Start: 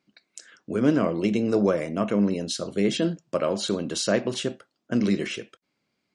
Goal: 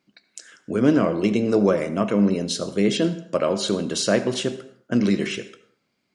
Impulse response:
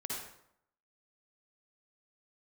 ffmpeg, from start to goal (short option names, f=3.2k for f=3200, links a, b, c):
-filter_complex "[0:a]asplit=2[a][b];[1:a]atrim=start_sample=2205,afade=t=out:st=0.38:d=0.01,atrim=end_sample=17199,adelay=16[c];[b][c]afir=irnorm=-1:irlink=0,volume=-14dB[d];[a][d]amix=inputs=2:normalize=0,volume=3dB"